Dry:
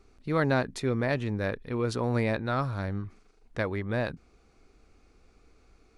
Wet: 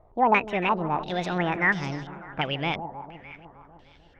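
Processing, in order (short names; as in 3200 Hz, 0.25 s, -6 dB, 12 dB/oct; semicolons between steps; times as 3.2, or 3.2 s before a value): speed glide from 160% -> 125%; echo with dull and thin repeats by turns 0.152 s, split 850 Hz, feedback 77%, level -12 dB; stepped low-pass 2.9 Hz 900–5000 Hz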